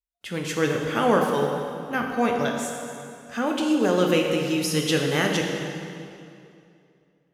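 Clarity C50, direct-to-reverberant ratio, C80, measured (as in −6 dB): 2.5 dB, 1.0 dB, 3.5 dB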